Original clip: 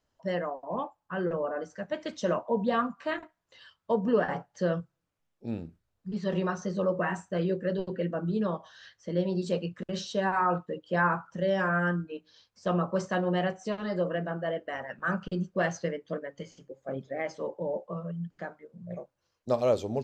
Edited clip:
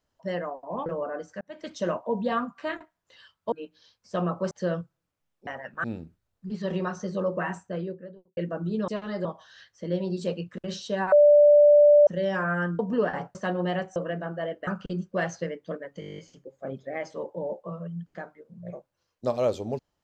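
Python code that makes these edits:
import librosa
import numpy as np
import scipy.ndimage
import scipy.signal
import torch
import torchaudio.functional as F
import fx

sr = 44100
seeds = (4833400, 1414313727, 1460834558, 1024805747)

y = fx.studio_fade_out(x, sr, start_s=7.06, length_s=0.93)
y = fx.edit(y, sr, fx.cut(start_s=0.86, length_s=0.42),
    fx.fade_in_span(start_s=1.83, length_s=0.31),
    fx.swap(start_s=3.94, length_s=0.56, other_s=12.04, other_length_s=0.99),
    fx.bleep(start_s=10.37, length_s=0.95, hz=588.0, db=-12.0),
    fx.move(start_s=13.64, length_s=0.37, to_s=8.5),
    fx.move(start_s=14.72, length_s=0.37, to_s=5.46),
    fx.stutter(start_s=16.42, slice_s=0.02, count=10), tone=tone)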